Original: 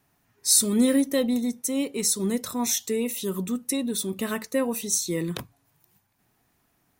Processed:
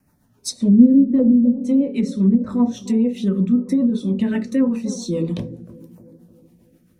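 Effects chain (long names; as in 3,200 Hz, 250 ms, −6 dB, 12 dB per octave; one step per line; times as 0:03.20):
bucket-brigade delay 305 ms, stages 2,048, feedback 55%, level −16 dB
auto-filter notch saw down 0.84 Hz 570–3,600 Hz
rotating-speaker cabinet horn 7.5 Hz
on a send at −4 dB: convolution reverb RT60 0.20 s, pre-delay 3 ms
on the sum: treble cut that deepens with the level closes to 330 Hz, closed at −13.5 dBFS
level +4 dB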